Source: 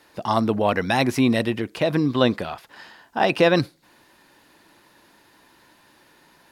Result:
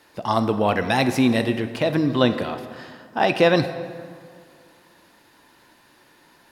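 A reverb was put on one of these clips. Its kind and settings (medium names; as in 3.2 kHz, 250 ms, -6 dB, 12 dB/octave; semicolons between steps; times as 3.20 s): plate-style reverb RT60 2.1 s, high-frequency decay 0.6×, DRR 9 dB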